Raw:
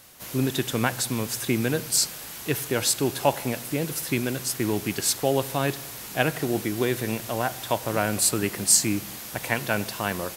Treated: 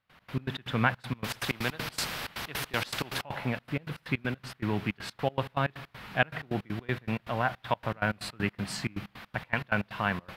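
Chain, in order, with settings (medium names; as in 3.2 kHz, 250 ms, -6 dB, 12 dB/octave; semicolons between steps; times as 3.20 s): distance through air 410 m; trance gate ".x.x.x.xxx.x.x" 159 bpm -24 dB; FFT filter 200 Hz 0 dB, 340 Hz -8 dB, 1.3 kHz +4 dB; 1.24–3.22 s: spectrum-flattening compressor 2:1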